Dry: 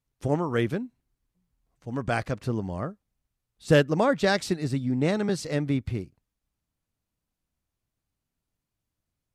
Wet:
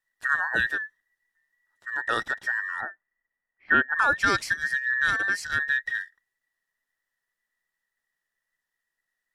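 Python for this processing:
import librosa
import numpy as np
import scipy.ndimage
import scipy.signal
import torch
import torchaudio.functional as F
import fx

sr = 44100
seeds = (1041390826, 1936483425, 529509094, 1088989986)

y = fx.band_invert(x, sr, width_hz=2000)
y = fx.bessel_lowpass(y, sr, hz=1800.0, order=8, at=(2.81, 3.99))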